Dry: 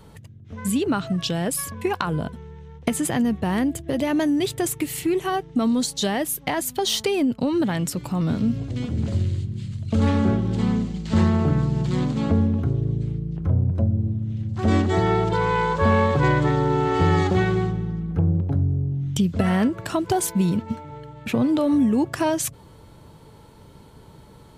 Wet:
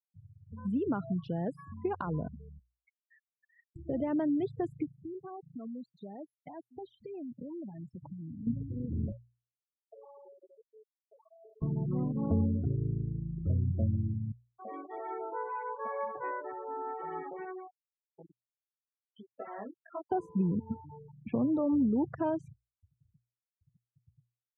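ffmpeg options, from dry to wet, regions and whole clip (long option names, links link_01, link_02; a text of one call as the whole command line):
ffmpeg -i in.wav -filter_complex "[0:a]asettb=1/sr,asplit=3[link_01][link_02][link_03];[link_01]atrim=end=2.594[link_04];[link_02]atrim=start=2.59:end=3.76,asetpts=PTS-STARTPTS,afade=type=in:duration=0.004:curve=qsin,afade=type=out:start_time=1.166:duration=0.004:curve=qsin,asuperpass=centerf=1600:order=4:qfactor=1.6,tremolo=f=110:d=0.788,aeval=exprs='(tanh(35.5*val(0)+0.45)-tanh(0.45))/35.5':channel_layout=same[link_05];[link_03]atrim=start=3.756[link_06];[link_04][link_05]acrossfade=duration=0.004:curve1=hsin:curve2=qsin[link_07];[link_07][link_06]acrossfade=duration=0.004:curve1=qsin:curve2=hsin,asettb=1/sr,asplit=3[link_08][link_09][link_10];[link_08]atrim=end=4.874[link_11];[link_09]atrim=start=4.87:end=8.47,asetpts=PTS-STARTPTS,afade=type=in:duration=0.004:curve=qsin,afade=type=out:start_time=3.596:duration=0.004:curve=qsin,highpass=58,acompressor=threshold=-30dB:ratio=10:attack=3.2:release=140:knee=1:detection=peak[link_12];[link_10]atrim=start=8.466[link_13];[link_11][link_12]acrossfade=duration=0.004:curve1=hsin:curve2=qsin[link_14];[link_14][link_13]acrossfade=duration=0.004:curve1=qsin:curve2=hsin,asettb=1/sr,asplit=3[link_15][link_16][link_17];[link_15]atrim=end=9.124[link_18];[link_16]atrim=start=9.12:end=11.62,asetpts=PTS-STARTPTS,afade=type=in:duration=0.004:curve=qsin,afade=type=out:start_time=2.496:duration=0.004:curve=qsin,highpass=frequency=460:width=0.5412,highpass=frequency=460:width=1.3066,acompressor=threshold=-38dB:ratio=4:attack=3.2:release=140:knee=1:detection=peak,aecho=1:1:71:0.0944,atrim=end_sample=110250[link_19];[link_17]atrim=start=11.616[link_20];[link_18][link_19]acrossfade=duration=0.004:curve1=hsin:curve2=qsin[link_21];[link_21][link_20]acrossfade=duration=0.004:curve1=qsin:curve2=hsin,asettb=1/sr,asplit=3[link_22][link_23][link_24];[link_22]atrim=end=14.324[link_25];[link_23]atrim=start=14.32:end=20.12,asetpts=PTS-STARTPTS,afade=type=in:duration=0.004:curve=qsin,afade=type=out:start_time=5.796:duration=0.004:curve=qsin,flanger=delay=18:depth=2.5:speed=1,highpass=570,lowpass=5400,acrusher=bits=5:mix=0:aa=0.5[link_26];[link_24]atrim=start=20.116[link_27];[link_25][link_26]acrossfade=duration=0.004:curve1=hsin:curve2=qsin[link_28];[link_28][link_27]acrossfade=duration=0.004:curve1=qsin:curve2=hsin,afftfilt=real='re*gte(hypot(re,im),0.0562)':imag='im*gte(hypot(re,im),0.0562)':win_size=1024:overlap=0.75,lowpass=1100,bandreject=frequency=60:width_type=h:width=6,bandreject=frequency=120:width_type=h:width=6,volume=-8.5dB" out.wav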